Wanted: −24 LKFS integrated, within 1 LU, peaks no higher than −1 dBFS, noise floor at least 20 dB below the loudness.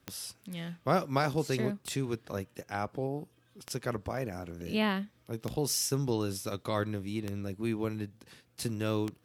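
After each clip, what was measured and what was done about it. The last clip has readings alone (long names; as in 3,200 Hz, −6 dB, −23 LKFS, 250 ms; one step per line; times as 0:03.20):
number of clicks 6; integrated loudness −34.0 LKFS; sample peak −13.0 dBFS; target loudness −24.0 LKFS
→ click removal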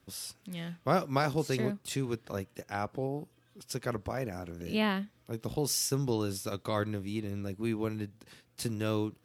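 number of clicks 0; integrated loudness −34.0 LKFS; sample peak −13.0 dBFS; target loudness −24.0 LKFS
→ level +10 dB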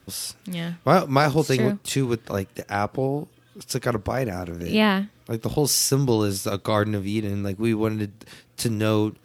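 integrated loudness −24.0 LKFS; sample peak −3.0 dBFS; background noise floor −57 dBFS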